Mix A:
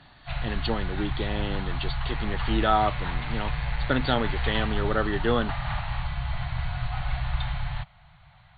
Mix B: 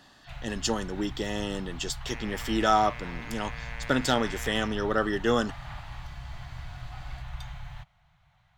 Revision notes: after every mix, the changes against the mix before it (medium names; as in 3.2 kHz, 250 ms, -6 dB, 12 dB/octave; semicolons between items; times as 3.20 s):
first sound -10.5 dB; master: remove brick-wall FIR low-pass 4.6 kHz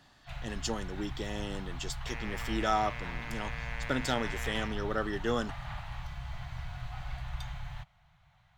speech -6.5 dB